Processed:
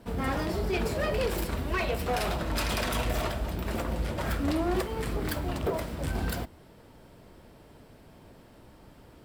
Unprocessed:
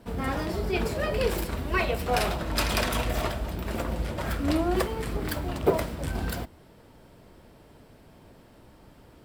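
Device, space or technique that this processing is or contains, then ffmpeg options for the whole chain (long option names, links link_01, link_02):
limiter into clipper: -af "alimiter=limit=-17dB:level=0:latency=1:release=183,asoftclip=type=hard:threshold=-23dB"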